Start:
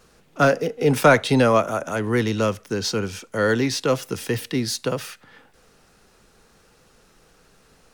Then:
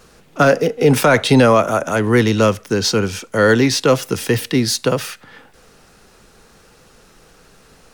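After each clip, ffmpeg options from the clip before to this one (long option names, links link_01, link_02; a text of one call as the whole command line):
ffmpeg -i in.wav -af "alimiter=level_in=8.5dB:limit=-1dB:release=50:level=0:latency=1,volume=-1dB" out.wav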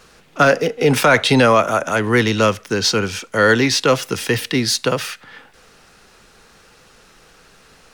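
ffmpeg -i in.wav -af "equalizer=frequency=2500:width=0.36:gain=6.5,volume=-3.5dB" out.wav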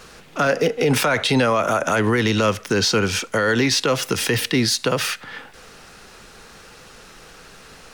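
ffmpeg -i in.wav -af "acompressor=threshold=-22dB:ratio=1.5,alimiter=limit=-14.5dB:level=0:latency=1:release=60,volume=5dB" out.wav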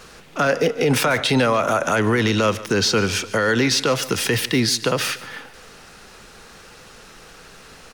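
ffmpeg -i in.wav -af "aecho=1:1:146|292|438|584:0.126|0.0629|0.0315|0.0157" out.wav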